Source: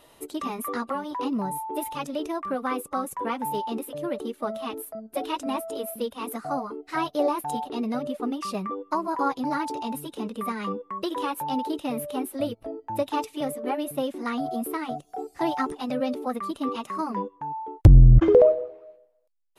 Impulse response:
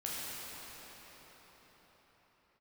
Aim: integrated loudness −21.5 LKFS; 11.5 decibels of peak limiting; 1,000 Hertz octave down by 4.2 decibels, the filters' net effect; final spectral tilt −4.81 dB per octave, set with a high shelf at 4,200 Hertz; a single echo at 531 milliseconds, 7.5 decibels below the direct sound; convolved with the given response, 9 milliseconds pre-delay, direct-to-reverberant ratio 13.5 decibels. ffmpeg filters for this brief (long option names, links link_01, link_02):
-filter_complex "[0:a]equalizer=frequency=1000:width_type=o:gain=-5.5,highshelf=frequency=4200:gain=6,alimiter=limit=-15.5dB:level=0:latency=1,aecho=1:1:531:0.422,asplit=2[link_01][link_02];[1:a]atrim=start_sample=2205,adelay=9[link_03];[link_02][link_03]afir=irnorm=-1:irlink=0,volume=-17.5dB[link_04];[link_01][link_04]amix=inputs=2:normalize=0,volume=8dB"